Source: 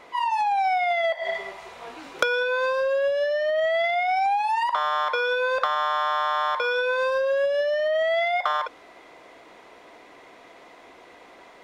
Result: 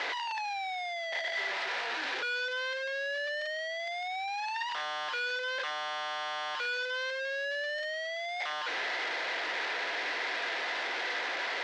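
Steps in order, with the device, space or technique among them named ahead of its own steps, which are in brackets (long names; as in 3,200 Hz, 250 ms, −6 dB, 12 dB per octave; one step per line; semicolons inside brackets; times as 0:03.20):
home computer beeper (sign of each sample alone; loudspeaker in its box 620–4,600 Hz, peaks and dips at 660 Hz −4 dB, 1,100 Hz −7 dB, 1,700 Hz +7 dB)
level −7 dB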